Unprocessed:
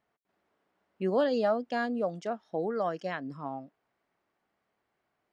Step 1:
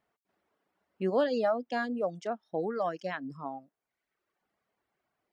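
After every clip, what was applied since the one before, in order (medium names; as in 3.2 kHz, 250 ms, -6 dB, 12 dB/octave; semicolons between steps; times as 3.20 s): reverb removal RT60 0.94 s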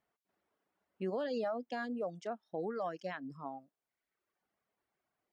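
peak limiter -23.5 dBFS, peak gain reduction 7 dB; trim -5 dB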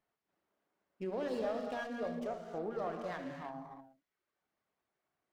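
gated-style reverb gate 360 ms flat, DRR 2 dB; sliding maximum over 5 samples; trim -2 dB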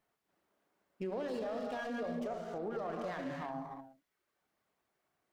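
peak limiter -35.5 dBFS, peak gain reduction 9.5 dB; trim +4.5 dB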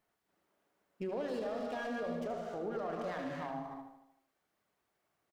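feedback delay 77 ms, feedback 54%, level -9 dB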